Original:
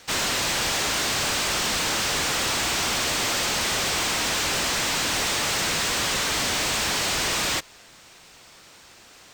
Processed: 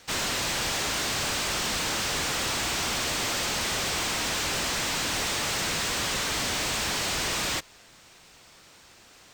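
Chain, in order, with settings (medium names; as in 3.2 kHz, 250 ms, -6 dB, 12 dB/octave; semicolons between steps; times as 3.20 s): bass shelf 220 Hz +3 dB; trim -4 dB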